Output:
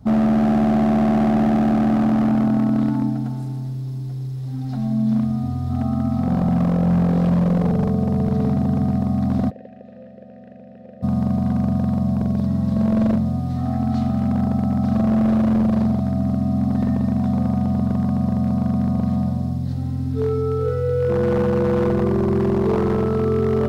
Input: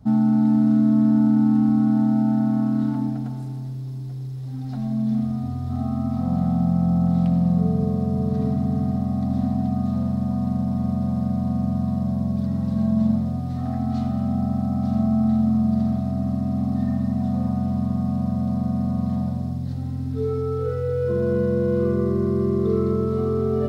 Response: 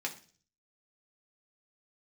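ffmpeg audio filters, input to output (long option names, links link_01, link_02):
-filter_complex "[0:a]aeval=exprs='0.158*(abs(mod(val(0)/0.158+3,4)-2)-1)':channel_layout=same,asplit=3[link_01][link_02][link_03];[link_01]afade=type=out:start_time=9.49:duration=0.02[link_04];[link_02]asplit=3[link_05][link_06][link_07];[link_05]bandpass=frequency=530:width_type=q:width=8,volume=0dB[link_08];[link_06]bandpass=frequency=1840:width_type=q:width=8,volume=-6dB[link_09];[link_07]bandpass=frequency=2480:width_type=q:width=8,volume=-9dB[link_10];[link_08][link_09][link_10]amix=inputs=3:normalize=0,afade=type=in:start_time=9.49:duration=0.02,afade=type=out:start_time=11.02:duration=0.02[link_11];[link_03]afade=type=in:start_time=11.02:duration=0.02[link_12];[link_04][link_11][link_12]amix=inputs=3:normalize=0,volume=3.5dB"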